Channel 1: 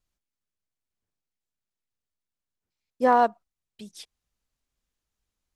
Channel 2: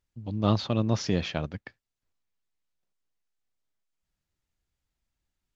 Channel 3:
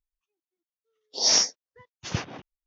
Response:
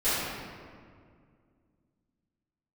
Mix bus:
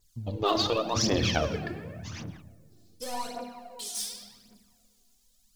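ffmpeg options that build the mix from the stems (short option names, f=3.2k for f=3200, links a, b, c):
-filter_complex "[0:a]aexciter=amount=15.3:drive=6:freq=3k,acompressor=threshold=-21dB:ratio=12,asoftclip=type=tanh:threshold=-25.5dB,volume=-15dB,asplit=2[a][b];[b]volume=-6dB[c];[1:a]bandreject=f=96.2:t=h:w=4,bandreject=f=192.4:t=h:w=4,bandreject=f=288.6:t=h:w=4,bandreject=f=384.8:t=h:w=4,bandreject=f=481:t=h:w=4,bandreject=f=577.2:t=h:w=4,bandreject=f=673.4:t=h:w=4,bandreject=f=769.6:t=h:w=4,bandreject=f=865.8:t=h:w=4,bandreject=f=962:t=h:w=4,bandreject=f=1.0582k:t=h:w=4,bandreject=f=1.1544k:t=h:w=4,bandreject=f=1.2506k:t=h:w=4,bandreject=f=1.3468k:t=h:w=4,bandreject=f=1.443k:t=h:w=4,bandreject=f=1.5392k:t=h:w=4,bandreject=f=1.6354k:t=h:w=4,bandreject=f=1.7316k:t=h:w=4,bandreject=f=1.8278k:t=h:w=4,bandreject=f=1.924k:t=h:w=4,bandreject=f=2.0202k:t=h:w=4,bandreject=f=2.1164k:t=h:w=4,bandreject=f=2.2126k:t=h:w=4,bandreject=f=2.3088k:t=h:w=4,bandreject=f=2.405k:t=h:w=4,bandreject=f=2.5012k:t=h:w=4,bandreject=f=2.5974k:t=h:w=4,bandreject=f=2.6936k:t=h:w=4,bandreject=f=2.7898k:t=h:w=4,bandreject=f=2.886k:t=h:w=4,bandreject=f=2.9822k:t=h:w=4,bandreject=f=3.0784k:t=h:w=4,bandreject=f=3.1746k:t=h:w=4,bandreject=f=3.2708k:t=h:w=4,bandreject=f=3.367k:t=h:w=4,bandreject=f=3.4632k:t=h:w=4,volume=2dB,asplit=3[d][e][f];[e]volume=-19.5dB[g];[2:a]highpass=f=740:w=0.5412,highpass=f=740:w=1.3066,acrossover=split=4800[h][i];[i]acompressor=threshold=-30dB:ratio=4:attack=1:release=60[j];[h][j]amix=inputs=2:normalize=0,volume=-11dB,asplit=2[k][l];[l]volume=-23.5dB[m];[f]apad=whole_len=117354[n];[k][n]sidechaincompress=threshold=-41dB:ratio=20:attack=8:release=127[o];[3:a]atrim=start_sample=2205[p];[c][g]amix=inputs=2:normalize=0[q];[q][p]afir=irnorm=-1:irlink=0[r];[m]aecho=0:1:114:1[s];[a][d][o][r][s]amix=inputs=5:normalize=0,afftfilt=real='re*lt(hypot(re,im),0.355)':imag='im*lt(hypot(re,im),0.355)':win_size=1024:overlap=0.75,aphaser=in_gain=1:out_gain=1:delay=3:decay=0.63:speed=0.88:type=triangular,adynamicequalizer=threshold=0.00501:dfrequency=5000:dqfactor=0.7:tfrequency=5000:tqfactor=0.7:attack=5:release=100:ratio=0.375:range=3:mode=boostabove:tftype=highshelf"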